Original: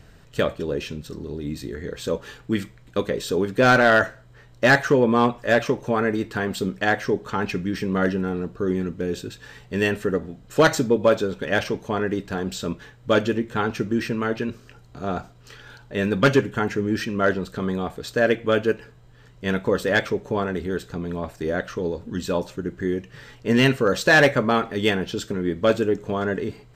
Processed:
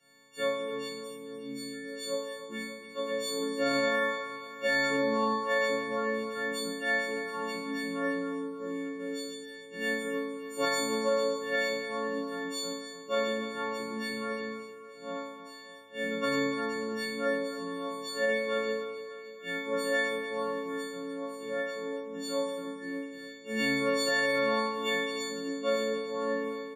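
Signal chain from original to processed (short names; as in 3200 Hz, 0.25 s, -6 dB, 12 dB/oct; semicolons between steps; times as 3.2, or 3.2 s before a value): frequency quantiser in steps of 4 st; steep high-pass 150 Hz 48 dB/oct; resonator bank F#2 minor, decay 0.84 s; limiter -19 dBFS, peak gain reduction 8 dB; feedback echo 0.293 s, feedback 58%, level -11 dB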